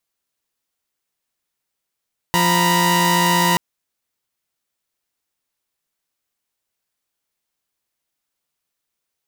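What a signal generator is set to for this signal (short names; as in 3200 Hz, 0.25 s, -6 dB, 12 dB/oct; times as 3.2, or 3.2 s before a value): chord F3/A#5/B5 saw, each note -16 dBFS 1.23 s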